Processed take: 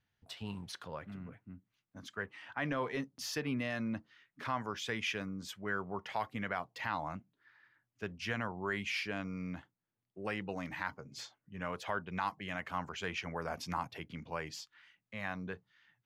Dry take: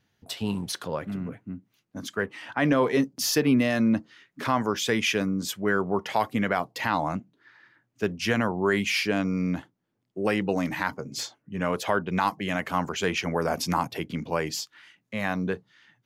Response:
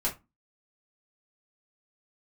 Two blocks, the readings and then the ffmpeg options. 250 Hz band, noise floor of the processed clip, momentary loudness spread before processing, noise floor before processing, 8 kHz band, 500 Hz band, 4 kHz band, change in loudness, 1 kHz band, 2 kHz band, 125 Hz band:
-15.0 dB, under -85 dBFS, 12 LU, -76 dBFS, -15.5 dB, -14.5 dB, -12.0 dB, -12.5 dB, -11.0 dB, -9.5 dB, -12.0 dB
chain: -af "lowpass=f=1.6k:p=1,equalizer=f=310:w=0.37:g=-13,volume=-3dB"

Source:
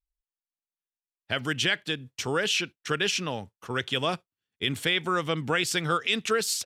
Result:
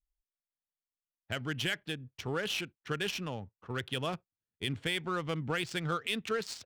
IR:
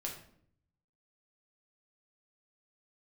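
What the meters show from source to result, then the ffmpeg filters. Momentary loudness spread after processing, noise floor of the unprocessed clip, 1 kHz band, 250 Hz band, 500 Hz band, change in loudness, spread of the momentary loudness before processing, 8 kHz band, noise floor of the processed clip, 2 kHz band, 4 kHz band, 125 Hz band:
7 LU, under -85 dBFS, -8.0 dB, -5.5 dB, -7.0 dB, -8.0 dB, 7 LU, -13.0 dB, under -85 dBFS, -8.5 dB, -9.0 dB, -3.5 dB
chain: -af "lowshelf=f=140:g=10,adynamicsmooth=sensitivity=4:basefreq=1.8k,volume=-8dB"

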